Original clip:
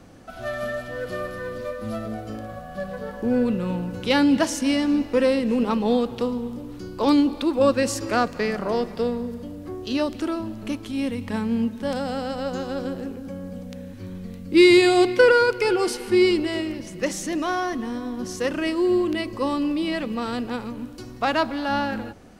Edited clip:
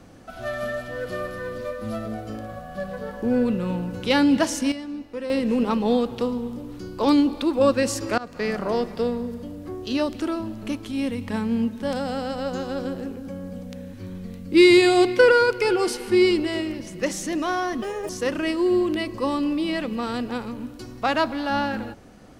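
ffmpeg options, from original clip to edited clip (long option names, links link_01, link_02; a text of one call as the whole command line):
ffmpeg -i in.wav -filter_complex "[0:a]asplit=6[link_01][link_02][link_03][link_04][link_05][link_06];[link_01]atrim=end=4.72,asetpts=PTS-STARTPTS,afade=type=out:start_time=4.59:duration=0.13:curve=log:silence=0.251189[link_07];[link_02]atrim=start=4.72:end=5.3,asetpts=PTS-STARTPTS,volume=-12dB[link_08];[link_03]atrim=start=5.3:end=8.18,asetpts=PTS-STARTPTS,afade=type=in:duration=0.13:curve=log:silence=0.251189,afade=type=out:start_time=2.876:duration=0.004:curve=hsin:silence=0.0668344[link_09];[link_04]atrim=start=8.18:end=17.824,asetpts=PTS-STARTPTS,afade=type=in:duration=0.32:silence=0.0668344[link_10];[link_05]atrim=start=17.82:end=18.28,asetpts=PTS-STARTPTS,asetrate=74529,aresample=44100[link_11];[link_06]atrim=start=18.276[link_12];[link_07][link_08][link_09][link_10]concat=n=4:v=0:a=1[link_13];[link_13][link_11]acrossfade=duration=0.004:curve1=hsin:curve2=hsin[link_14];[link_14][link_12]acrossfade=duration=0.004:curve1=hsin:curve2=hsin" out.wav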